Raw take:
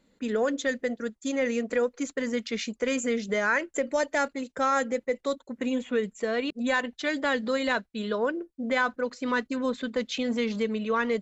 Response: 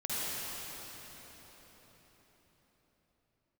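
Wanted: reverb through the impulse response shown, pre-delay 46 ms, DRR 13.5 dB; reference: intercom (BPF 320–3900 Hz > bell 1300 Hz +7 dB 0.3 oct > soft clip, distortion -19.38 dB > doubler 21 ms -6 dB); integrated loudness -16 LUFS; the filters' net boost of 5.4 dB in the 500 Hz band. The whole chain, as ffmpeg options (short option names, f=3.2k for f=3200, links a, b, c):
-filter_complex "[0:a]equalizer=f=500:t=o:g=6.5,asplit=2[a][b];[1:a]atrim=start_sample=2205,adelay=46[c];[b][c]afir=irnorm=-1:irlink=0,volume=-20.5dB[d];[a][d]amix=inputs=2:normalize=0,highpass=320,lowpass=3.9k,equalizer=f=1.3k:t=o:w=0.3:g=7,asoftclip=threshold=-14dB,asplit=2[e][f];[f]adelay=21,volume=-6dB[g];[e][g]amix=inputs=2:normalize=0,volume=9.5dB"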